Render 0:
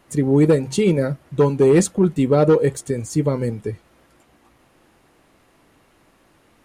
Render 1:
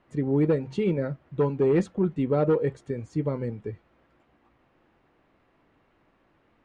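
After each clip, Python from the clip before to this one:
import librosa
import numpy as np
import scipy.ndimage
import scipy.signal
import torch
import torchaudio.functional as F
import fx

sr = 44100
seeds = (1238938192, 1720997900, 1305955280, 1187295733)

y = scipy.signal.sosfilt(scipy.signal.butter(2, 2700.0, 'lowpass', fs=sr, output='sos'), x)
y = y * librosa.db_to_amplitude(-8.0)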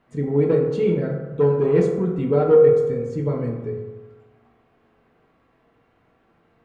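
y = fx.rev_fdn(x, sr, rt60_s=1.2, lf_ratio=1.0, hf_ratio=0.45, size_ms=13.0, drr_db=-1.0)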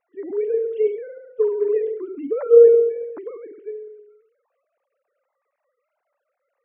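y = fx.sine_speech(x, sr)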